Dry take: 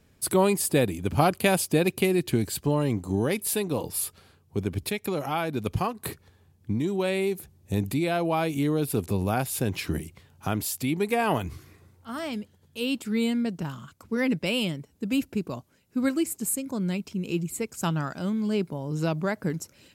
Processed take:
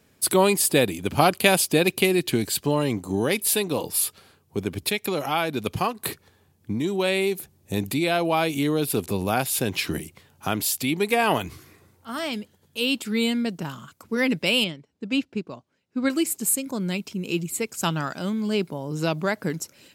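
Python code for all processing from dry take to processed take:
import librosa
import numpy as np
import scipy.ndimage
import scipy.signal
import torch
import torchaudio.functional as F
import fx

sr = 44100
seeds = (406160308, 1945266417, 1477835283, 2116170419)

y = fx.chain(x, sr, fx.lowpass(hz=5000.0, slope=12),
    fx.upward_expand(threshold_db=-40.0, expansion=1.5), at=(14.64, 16.1))
y = fx.dynamic_eq(y, sr, hz=3500.0, q=0.91, threshold_db=-46.0, ratio=4.0, max_db=5)
y = fx.highpass(y, sr, hz=200.0, slope=6)
y = fx.high_shelf(y, sr, hz=11000.0, db=4.0)
y = y * librosa.db_to_amplitude(3.5)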